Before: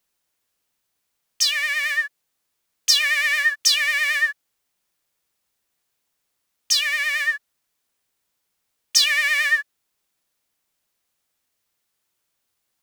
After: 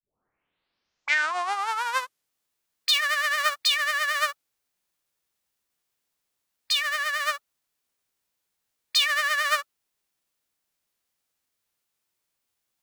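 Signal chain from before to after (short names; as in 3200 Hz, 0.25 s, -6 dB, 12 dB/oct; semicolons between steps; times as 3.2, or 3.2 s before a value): tape start at the beginning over 2.30 s; formant shift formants -5 st; gain -4.5 dB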